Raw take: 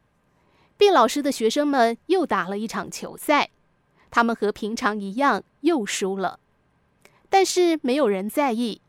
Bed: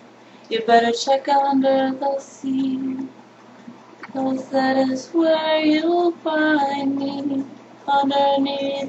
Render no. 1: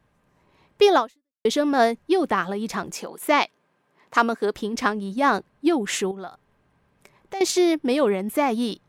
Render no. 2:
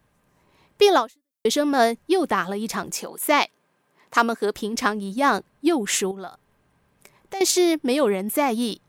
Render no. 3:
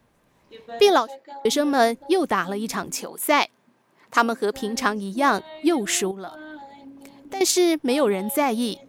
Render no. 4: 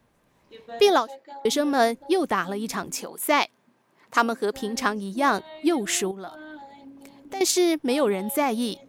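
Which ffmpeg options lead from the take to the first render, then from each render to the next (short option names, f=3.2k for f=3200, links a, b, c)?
-filter_complex "[0:a]asettb=1/sr,asplit=3[a][b][c];[a]atrim=end=2.944[d];[b]atrim=start=2.94:end=4.54,asetpts=PTS-STARTPTS,afade=t=in:d=0.004:c=qsin,afade=t=out:st=1.596:d=0.004:c=qsin,highpass=230[e];[c]atrim=start=4.536[f];[d][e]acrossfade=d=0.004:c1=hsin:c2=qsin[g];[g][f]acrossfade=d=0.004:c1=qsin:c2=hsin,asettb=1/sr,asplit=3[h][i][j];[h]atrim=end=6.114[k];[i]atrim=start=6.11:end=7.41,asetpts=PTS-STARTPTS,afade=t=in:d=0.004:c=qsin,afade=t=out:st=1.296:d=0.004:c=qsin,acompressor=threshold=-40dB:ratio=2:attack=3.2:release=140:knee=1:detection=peak[l];[j]atrim=start=7.406[m];[k][l]acrossfade=d=0.004:c1=hsin:c2=qsin[n];[n][m]acrossfade=d=0.004:c1=qsin:c2=hsin,asplit=2[o][p];[o]atrim=end=1.45,asetpts=PTS-STARTPTS,afade=t=out:st=0.97:d=0.48:c=exp[q];[p]atrim=start=1.45,asetpts=PTS-STARTPTS,afade=t=in:d=0.004:c=hsin[r];[q][r]concat=n=2:v=0:a=1"
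-af "highshelf=f=6.5k:g=10.5"
-filter_complex "[1:a]volume=-22dB[a];[0:a][a]amix=inputs=2:normalize=0"
-af "volume=-2dB"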